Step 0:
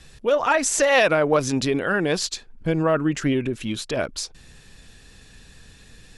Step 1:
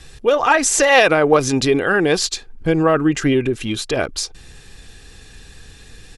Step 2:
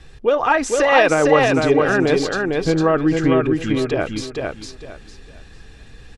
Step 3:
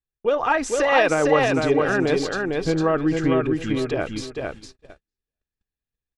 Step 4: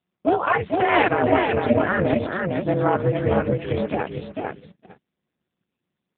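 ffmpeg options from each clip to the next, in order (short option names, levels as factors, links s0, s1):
-af "aecho=1:1:2.5:0.32,volume=1.88"
-filter_complex "[0:a]aemphasis=mode=reproduction:type=75kf,asplit=2[s0][s1];[s1]aecho=0:1:454|908|1362|1816:0.668|0.167|0.0418|0.0104[s2];[s0][s2]amix=inputs=2:normalize=0,volume=0.891"
-af "agate=range=0.00501:threshold=0.0251:ratio=16:detection=peak,volume=0.631"
-af "aeval=exprs='val(0)*sin(2*PI*180*n/s)':c=same,volume=1.68" -ar 8000 -c:a libopencore_amrnb -b:a 6700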